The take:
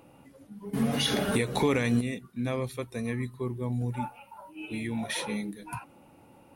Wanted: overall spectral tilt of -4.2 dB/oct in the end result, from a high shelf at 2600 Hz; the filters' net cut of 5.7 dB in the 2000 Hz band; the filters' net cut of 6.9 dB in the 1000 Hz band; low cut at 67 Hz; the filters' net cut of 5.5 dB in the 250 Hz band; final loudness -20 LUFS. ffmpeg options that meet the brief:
-af "highpass=67,equalizer=f=250:t=o:g=-6,equalizer=f=1k:t=o:g=-7.5,equalizer=f=2k:t=o:g=-7.5,highshelf=f=2.6k:g=5,volume=13dB"

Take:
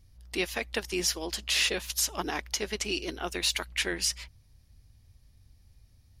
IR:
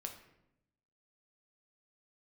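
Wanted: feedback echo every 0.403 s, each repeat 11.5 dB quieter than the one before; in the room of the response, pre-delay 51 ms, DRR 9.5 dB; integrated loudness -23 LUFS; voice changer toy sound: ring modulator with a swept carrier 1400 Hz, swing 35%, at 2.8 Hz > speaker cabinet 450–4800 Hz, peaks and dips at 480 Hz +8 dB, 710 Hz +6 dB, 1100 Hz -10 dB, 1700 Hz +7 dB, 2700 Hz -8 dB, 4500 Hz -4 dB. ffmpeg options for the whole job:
-filter_complex "[0:a]aecho=1:1:403|806|1209:0.266|0.0718|0.0194,asplit=2[a][b];[1:a]atrim=start_sample=2205,adelay=51[c];[b][c]afir=irnorm=-1:irlink=0,volume=-7dB[d];[a][d]amix=inputs=2:normalize=0,aeval=exprs='val(0)*sin(2*PI*1400*n/s+1400*0.35/2.8*sin(2*PI*2.8*n/s))':c=same,highpass=450,equalizer=f=480:t=q:w=4:g=8,equalizer=f=710:t=q:w=4:g=6,equalizer=f=1.1k:t=q:w=4:g=-10,equalizer=f=1.7k:t=q:w=4:g=7,equalizer=f=2.7k:t=q:w=4:g=-8,equalizer=f=4.5k:t=q:w=4:g=-4,lowpass=f=4.8k:w=0.5412,lowpass=f=4.8k:w=1.3066,volume=10.5dB"

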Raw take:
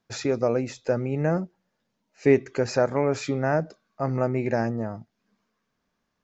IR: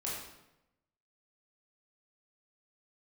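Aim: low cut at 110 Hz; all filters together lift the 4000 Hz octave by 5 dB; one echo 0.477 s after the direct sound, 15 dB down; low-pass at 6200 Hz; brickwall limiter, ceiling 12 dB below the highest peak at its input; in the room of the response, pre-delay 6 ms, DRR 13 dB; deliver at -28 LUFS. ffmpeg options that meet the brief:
-filter_complex "[0:a]highpass=110,lowpass=6.2k,equalizer=f=4k:t=o:g=7.5,alimiter=limit=-18dB:level=0:latency=1,aecho=1:1:477:0.178,asplit=2[a][b];[1:a]atrim=start_sample=2205,adelay=6[c];[b][c]afir=irnorm=-1:irlink=0,volume=-15.5dB[d];[a][d]amix=inputs=2:normalize=0,volume=2dB"

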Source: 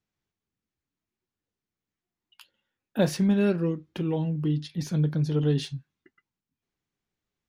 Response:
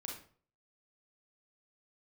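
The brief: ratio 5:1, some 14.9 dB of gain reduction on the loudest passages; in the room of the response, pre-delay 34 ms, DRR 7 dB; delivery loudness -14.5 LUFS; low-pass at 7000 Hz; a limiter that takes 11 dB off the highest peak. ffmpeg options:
-filter_complex "[0:a]lowpass=7k,acompressor=threshold=-36dB:ratio=5,alimiter=level_in=10.5dB:limit=-24dB:level=0:latency=1,volume=-10.5dB,asplit=2[a][b];[1:a]atrim=start_sample=2205,adelay=34[c];[b][c]afir=irnorm=-1:irlink=0,volume=-5dB[d];[a][d]amix=inputs=2:normalize=0,volume=27dB"

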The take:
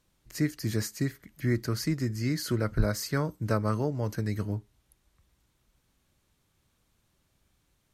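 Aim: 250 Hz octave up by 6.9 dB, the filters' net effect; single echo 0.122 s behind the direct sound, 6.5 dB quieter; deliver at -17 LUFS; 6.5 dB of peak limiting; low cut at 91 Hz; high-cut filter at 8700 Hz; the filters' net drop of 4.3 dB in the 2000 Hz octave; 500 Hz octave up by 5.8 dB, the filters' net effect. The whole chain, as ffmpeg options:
-af "highpass=91,lowpass=8.7k,equalizer=f=250:t=o:g=7.5,equalizer=f=500:t=o:g=5,equalizer=f=2k:t=o:g=-6,alimiter=limit=-17dB:level=0:latency=1,aecho=1:1:122:0.473,volume=11dB"

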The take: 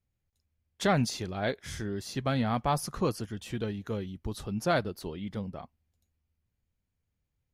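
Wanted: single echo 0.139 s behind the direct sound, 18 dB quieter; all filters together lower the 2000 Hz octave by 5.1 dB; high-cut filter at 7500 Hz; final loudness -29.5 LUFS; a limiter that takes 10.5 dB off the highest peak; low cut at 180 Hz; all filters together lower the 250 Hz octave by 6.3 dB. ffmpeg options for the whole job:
-af "highpass=180,lowpass=7.5k,equalizer=f=250:t=o:g=-6,equalizer=f=2k:t=o:g=-7,alimiter=level_in=2dB:limit=-24dB:level=0:latency=1,volume=-2dB,aecho=1:1:139:0.126,volume=10dB"

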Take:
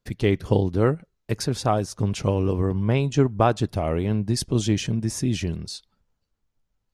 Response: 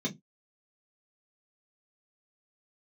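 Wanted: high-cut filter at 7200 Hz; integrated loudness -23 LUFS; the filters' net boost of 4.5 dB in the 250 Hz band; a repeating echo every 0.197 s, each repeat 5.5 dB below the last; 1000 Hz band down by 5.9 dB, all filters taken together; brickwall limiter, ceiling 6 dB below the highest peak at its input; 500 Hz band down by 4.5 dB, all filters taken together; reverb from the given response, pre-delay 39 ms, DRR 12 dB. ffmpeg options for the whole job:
-filter_complex "[0:a]lowpass=7.2k,equalizer=f=250:t=o:g=8,equalizer=f=500:t=o:g=-8,equalizer=f=1k:t=o:g=-5.5,alimiter=limit=-12dB:level=0:latency=1,aecho=1:1:197|394|591|788|985|1182|1379:0.531|0.281|0.149|0.079|0.0419|0.0222|0.0118,asplit=2[a][b];[1:a]atrim=start_sample=2205,adelay=39[c];[b][c]afir=irnorm=-1:irlink=0,volume=-16dB[d];[a][d]amix=inputs=2:normalize=0,volume=-3.5dB"

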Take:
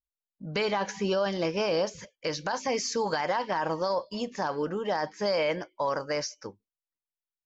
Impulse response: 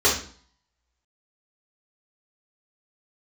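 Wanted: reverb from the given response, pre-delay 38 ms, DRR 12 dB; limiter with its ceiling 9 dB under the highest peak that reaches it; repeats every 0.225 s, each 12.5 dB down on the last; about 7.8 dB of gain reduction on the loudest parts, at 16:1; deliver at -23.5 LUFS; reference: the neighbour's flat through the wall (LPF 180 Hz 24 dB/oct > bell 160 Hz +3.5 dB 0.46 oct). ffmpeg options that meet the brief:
-filter_complex "[0:a]acompressor=threshold=-31dB:ratio=16,alimiter=level_in=5dB:limit=-24dB:level=0:latency=1,volume=-5dB,aecho=1:1:225|450|675:0.237|0.0569|0.0137,asplit=2[a][b];[1:a]atrim=start_sample=2205,adelay=38[c];[b][c]afir=irnorm=-1:irlink=0,volume=-30dB[d];[a][d]amix=inputs=2:normalize=0,lowpass=f=180:w=0.5412,lowpass=f=180:w=1.3066,equalizer=f=160:t=o:w=0.46:g=3.5,volume=26dB"

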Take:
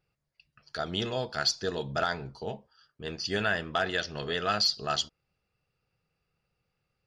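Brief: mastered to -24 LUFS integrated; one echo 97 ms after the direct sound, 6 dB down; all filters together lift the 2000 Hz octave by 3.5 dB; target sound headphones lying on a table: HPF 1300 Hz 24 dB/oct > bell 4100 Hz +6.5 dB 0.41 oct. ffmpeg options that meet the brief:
-af "highpass=f=1.3k:w=0.5412,highpass=f=1.3k:w=1.3066,equalizer=f=2k:t=o:g=5.5,equalizer=f=4.1k:t=o:w=0.41:g=6.5,aecho=1:1:97:0.501,volume=2dB"

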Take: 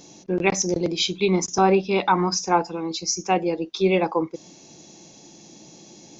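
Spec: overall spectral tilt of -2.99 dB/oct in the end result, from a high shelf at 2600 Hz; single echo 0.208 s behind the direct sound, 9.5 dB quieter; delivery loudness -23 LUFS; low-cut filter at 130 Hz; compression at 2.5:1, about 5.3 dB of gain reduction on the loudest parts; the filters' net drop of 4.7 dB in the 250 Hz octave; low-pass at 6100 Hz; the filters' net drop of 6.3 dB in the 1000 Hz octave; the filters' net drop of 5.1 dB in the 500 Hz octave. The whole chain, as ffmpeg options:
-af "highpass=130,lowpass=6.1k,equalizer=f=250:t=o:g=-5,equalizer=f=500:t=o:g=-3.5,equalizer=f=1k:t=o:g=-7,highshelf=f=2.6k:g=3,acompressor=threshold=-26dB:ratio=2.5,aecho=1:1:208:0.335,volume=6dB"

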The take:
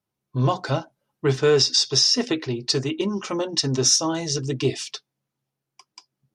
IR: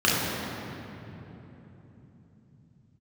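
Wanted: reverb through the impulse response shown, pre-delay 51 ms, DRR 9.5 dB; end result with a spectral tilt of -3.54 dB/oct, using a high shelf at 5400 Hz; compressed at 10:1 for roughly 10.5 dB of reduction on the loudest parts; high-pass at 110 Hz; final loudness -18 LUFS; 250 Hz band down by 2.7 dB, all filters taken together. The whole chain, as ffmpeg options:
-filter_complex "[0:a]highpass=110,equalizer=f=250:t=o:g=-3.5,highshelf=f=5.4k:g=6,acompressor=threshold=-22dB:ratio=10,asplit=2[a][b];[1:a]atrim=start_sample=2205,adelay=51[c];[b][c]afir=irnorm=-1:irlink=0,volume=-28dB[d];[a][d]amix=inputs=2:normalize=0,volume=8.5dB"

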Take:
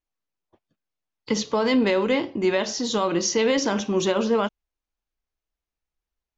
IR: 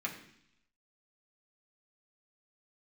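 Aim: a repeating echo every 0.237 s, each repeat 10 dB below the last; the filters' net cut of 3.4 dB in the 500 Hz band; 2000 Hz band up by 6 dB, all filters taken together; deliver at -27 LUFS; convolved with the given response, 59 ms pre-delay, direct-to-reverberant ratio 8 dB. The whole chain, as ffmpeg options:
-filter_complex "[0:a]equalizer=f=500:t=o:g=-4.5,equalizer=f=2k:t=o:g=7,aecho=1:1:237|474|711|948:0.316|0.101|0.0324|0.0104,asplit=2[a][b];[1:a]atrim=start_sample=2205,adelay=59[c];[b][c]afir=irnorm=-1:irlink=0,volume=-11dB[d];[a][d]amix=inputs=2:normalize=0,volume=-5dB"

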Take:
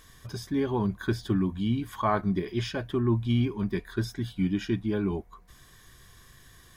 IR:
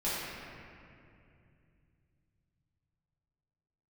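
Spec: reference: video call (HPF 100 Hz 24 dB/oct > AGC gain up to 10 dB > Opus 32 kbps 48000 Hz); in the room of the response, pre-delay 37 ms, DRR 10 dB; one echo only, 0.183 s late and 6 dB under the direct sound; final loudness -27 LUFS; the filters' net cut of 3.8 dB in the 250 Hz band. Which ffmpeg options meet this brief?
-filter_complex "[0:a]equalizer=f=250:t=o:g=-5,aecho=1:1:183:0.501,asplit=2[a][b];[1:a]atrim=start_sample=2205,adelay=37[c];[b][c]afir=irnorm=-1:irlink=0,volume=-18dB[d];[a][d]amix=inputs=2:normalize=0,highpass=f=100:w=0.5412,highpass=f=100:w=1.3066,dynaudnorm=m=10dB,volume=3.5dB" -ar 48000 -c:a libopus -b:a 32k

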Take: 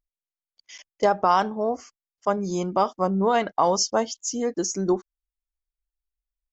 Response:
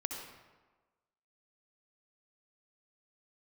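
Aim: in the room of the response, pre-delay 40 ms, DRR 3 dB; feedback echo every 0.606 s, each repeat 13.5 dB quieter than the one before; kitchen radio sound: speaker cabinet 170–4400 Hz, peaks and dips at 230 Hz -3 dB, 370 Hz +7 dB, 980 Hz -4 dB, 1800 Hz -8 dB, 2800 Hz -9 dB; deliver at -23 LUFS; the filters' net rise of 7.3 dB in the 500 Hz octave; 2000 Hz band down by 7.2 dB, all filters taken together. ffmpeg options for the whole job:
-filter_complex "[0:a]equalizer=f=500:t=o:g=7,equalizer=f=2k:t=o:g=-5,aecho=1:1:606|1212:0.211|0.0444,asplit=2[a][b];[1:a]atrim=start_sample=2205,adelay=40[c];[b][c]afir=irnorm=-1:irlink=0,volume=-4.5dB[d];[a][d]amix=inputs=2:normalize=0,highpass=170,equalizer=f=230:t=q:w=4:g=-3,equalizer=f=370:t=q:w=4:g=7,equalizer=f=980:t=q:w=4:g=-4,equalizer=f=1.8k:t=q:w=4:g=-8,equalizer=f=2.8k:t=q:w=4:g=-9,lowpass=f=4.4k:w=0.5412,lowpass=f=4.4k:w=1.3066,volume=-4.5dB"

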